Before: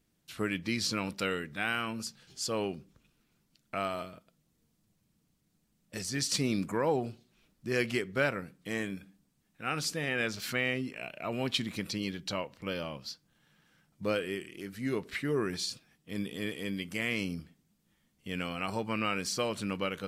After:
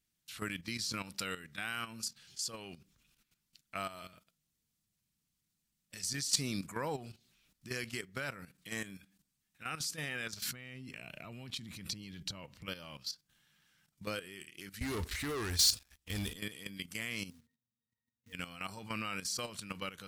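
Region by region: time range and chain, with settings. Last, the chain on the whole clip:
10.41–12.66 low shelf 350 Hz +12 dB + compressor 5:1, threshold -33 dBFS
14.81–16.34 resonant low shelf 100 Hz +12.5 dB, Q 3 + sample leveller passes 3
17.3–18.33 octave resonator A#, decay 0.14 s + short-mantissa float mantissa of 2-bit
whole clip: passive tone stack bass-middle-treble 5-5-5; level quantiser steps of 12 dB; dynamic EQ 2500 Hz, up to -6 dB, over -59 dBFS, Q 0.95; gain +12.5 dB

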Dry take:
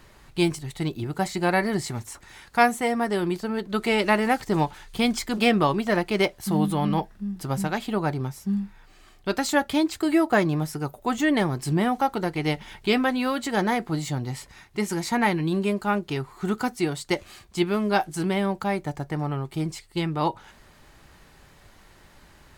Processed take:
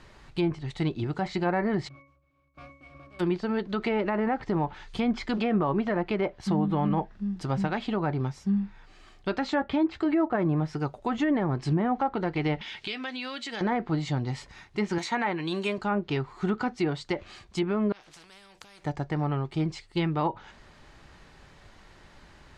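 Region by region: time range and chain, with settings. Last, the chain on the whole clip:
1.87–3.19 spectral contrast lowered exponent 0.34 + octave resonator C#, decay 0.42 s
9.41–10.06 high shelf 8000 Hz -11 dB + doubler 15 ms -13 dB
12.61–13.61 weighting filter D + compressor 3:1, threshold -36 dBFS
14.98–15.78 RIAA curve recording + notch 5000 Hz, Q 5.1
17.92–18.84 compressor 10:1, threshold -33 dBFS + spectral compressor 4:1
whole clip: treble ducked by the level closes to 1500 Hz, closed at -18.5 dBFS; LPF 6100 Hz 12 dB/oct; limiter -17 dBFS

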